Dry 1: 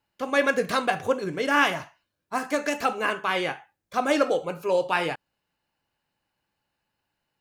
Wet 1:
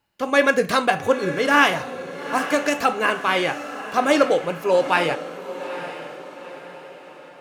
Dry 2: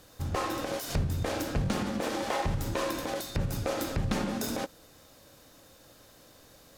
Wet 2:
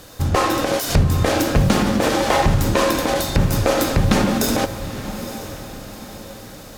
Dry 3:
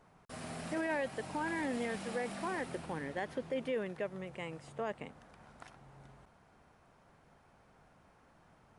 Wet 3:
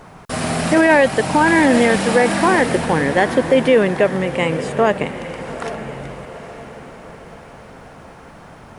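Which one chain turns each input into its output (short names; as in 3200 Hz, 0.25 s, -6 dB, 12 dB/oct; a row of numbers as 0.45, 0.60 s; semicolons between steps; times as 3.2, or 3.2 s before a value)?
diffused feedback echo 0.876 s, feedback 46%, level -12 dB; normalise peaks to -2 dBFS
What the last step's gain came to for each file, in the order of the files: +5.0, +13.5, +23.0 dB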